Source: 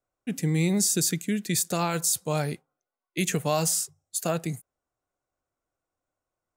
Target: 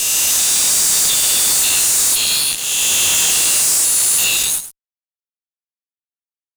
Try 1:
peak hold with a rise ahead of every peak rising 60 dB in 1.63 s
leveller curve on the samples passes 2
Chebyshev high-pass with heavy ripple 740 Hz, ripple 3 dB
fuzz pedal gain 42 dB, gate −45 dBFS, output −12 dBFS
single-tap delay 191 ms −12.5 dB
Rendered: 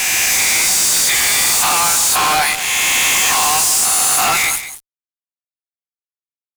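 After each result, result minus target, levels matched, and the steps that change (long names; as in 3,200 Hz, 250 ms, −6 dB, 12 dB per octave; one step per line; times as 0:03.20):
echo 87 ms late; 1,000 Hz band +14.5 dB
change: single-tap delay 104 ms −12.5 dB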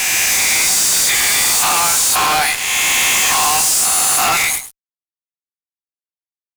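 1,000 Hz band +14.5 dB
change: Chebyshev high-pass with heavy ripple 2,700 Hz, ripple 3 dB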